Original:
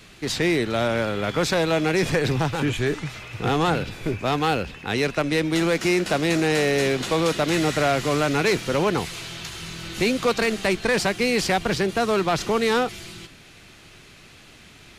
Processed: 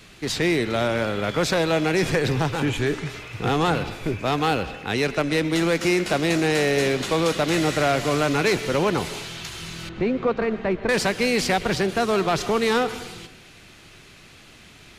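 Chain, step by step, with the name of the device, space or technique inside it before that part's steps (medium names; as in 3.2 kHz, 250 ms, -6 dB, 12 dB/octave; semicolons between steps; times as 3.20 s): 9.89–10.89 s: Bessel low-pass 1.2 kHz, order 2; filtered reverb send (on a send: high-pass 270 Hz + low-pass 3.9 kHz 12 dB/octave + reverberation RT60 0.85 s, pre-delay 109 ms, DRR 13.5 dB)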